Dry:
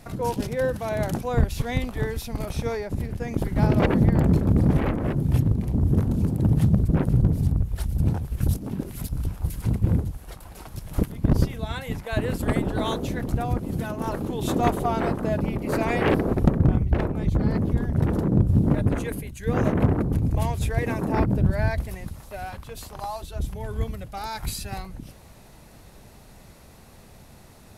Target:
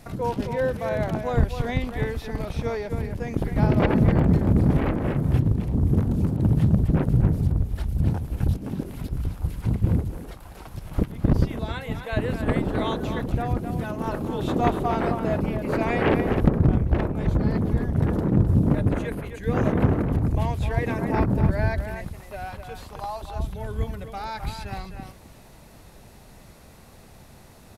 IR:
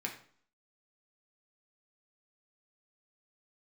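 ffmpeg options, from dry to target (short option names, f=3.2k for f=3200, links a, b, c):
-filter_complex "[0:a]asplit=2[a][b];[b]adelay=260,highpass=300,lowpass=3.4k,asoftclip=type=hard:threshold=-17dB,volume=-7dB[c];[a][c]amix=inputs=2:normalize=0,acrossover=split=4200[d][e];[e]acompressor=threshold=-52dB:ratio=4:attack=1:release=60[f];[d][f]amix=inputs=2:normalize=0"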